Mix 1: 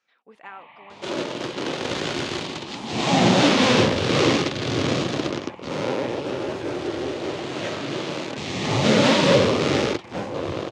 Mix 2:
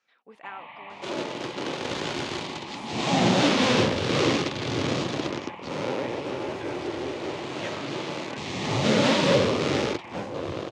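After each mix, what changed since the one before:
first sound +4.5 dB; second sound -4.0 dB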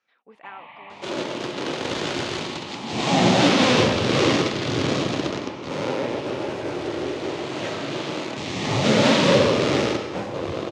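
speech: add high shelf 4600 Hz -6.5 dB; reverb: on, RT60 1.1 s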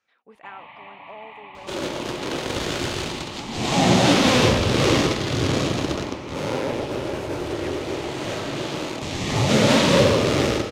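second sound: entry +0.65 s; master: remove BPF 130–6300 Hz

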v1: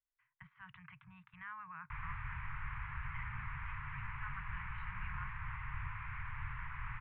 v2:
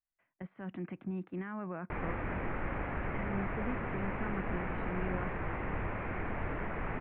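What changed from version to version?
background +4.0 dB; master: remove Chebyshev band-stop 140–990 Hz, order 4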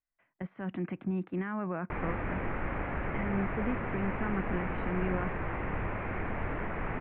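speech +5.5 dB; reverb: on, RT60 1.7 s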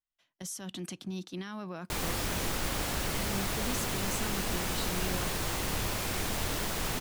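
speech -5.5 dB; master: remove steep low-pass 2300 Hz 48 dB/oct

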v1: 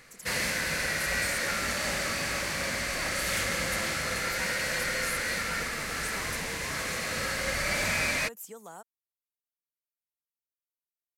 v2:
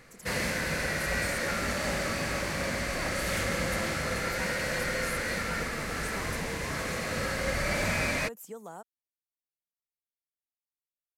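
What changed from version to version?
master: add tilt shelf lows +4.5 dB, about 1200 Hz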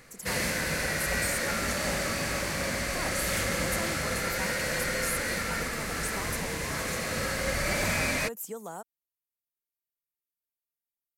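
speech +3.5 dB; master: add high shelf 5900 Hz +7 dB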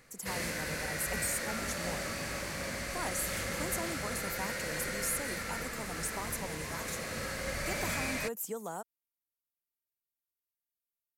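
background -7.0 dB

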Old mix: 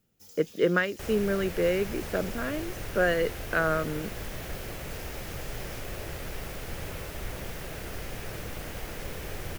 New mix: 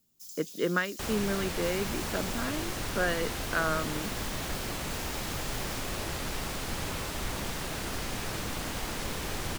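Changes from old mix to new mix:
speech -7.0 dB; first sound: add differentiator; master: add graphic EQ 250/500/1000/4000/8000 Hz +7/-3/+8/+7/+7 dB

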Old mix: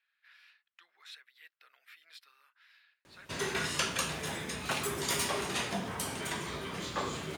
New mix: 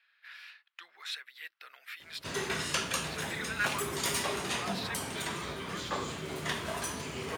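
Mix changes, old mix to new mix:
speech +11.0 dB; background: entry -1.05 s

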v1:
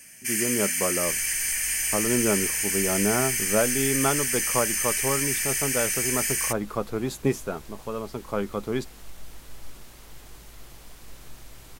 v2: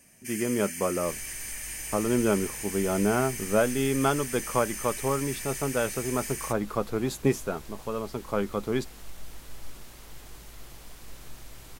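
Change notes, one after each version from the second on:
first sound -11.0 dB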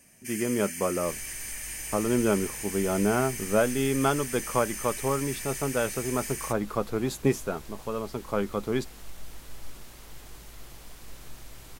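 none

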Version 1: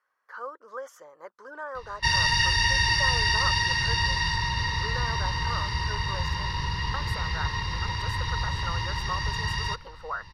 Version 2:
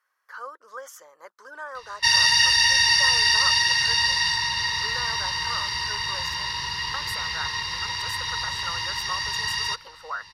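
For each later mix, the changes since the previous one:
master: add tilt +3.5 dB/oct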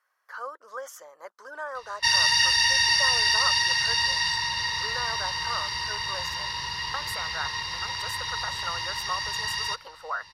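background -3.0 dB; master: add bell 670 Hz +6 dB 0.58 oct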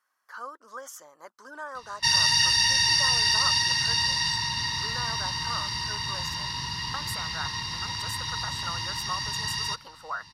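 master: add graphic EQ 125/250/500/2000/8000 Hz +7/+11/-8/-4/+3 dB

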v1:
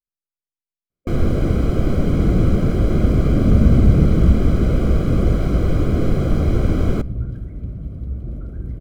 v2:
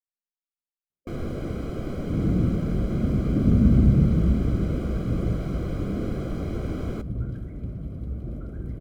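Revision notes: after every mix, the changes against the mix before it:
speech -10.5 dB; first sound -9.5 dB; master: add low shelf 100 Hz -8.5 dB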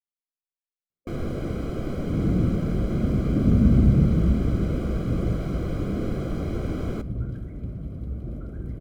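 first sound: send +6.0 dB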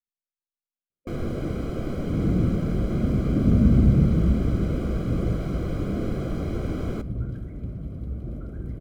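speech +8.0 dB

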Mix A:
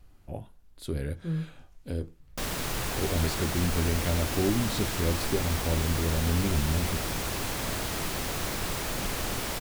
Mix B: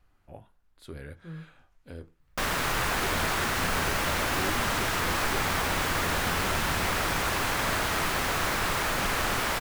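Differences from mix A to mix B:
speech -11.0 dB; master: add bell 1400 Hz +10 dB 2.2 oct

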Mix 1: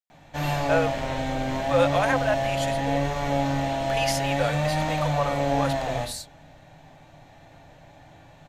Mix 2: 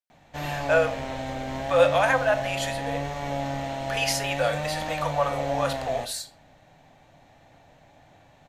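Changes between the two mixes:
speech: send on; background: send -11.5 dB

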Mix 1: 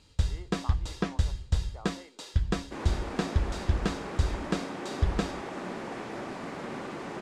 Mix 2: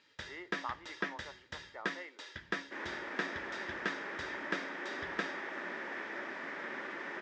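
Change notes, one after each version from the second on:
speech +7.0 dB; master: add speaker cabinet 470–5000 Hz, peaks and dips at 470 Hz -6 dB, 740 Hz -10 dB, 1100 Hz -5 dB, 1800 Hz +9 dB, 2800 Hz -4 dB, 4300 Hz -9 dB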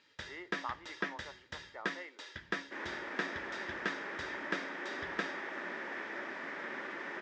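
none

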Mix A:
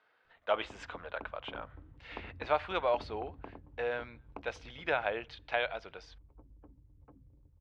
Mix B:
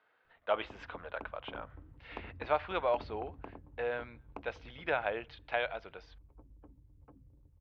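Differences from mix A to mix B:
speech: add air absorption 230 m; master: add high shelf 6400 Hz +8.5 dB

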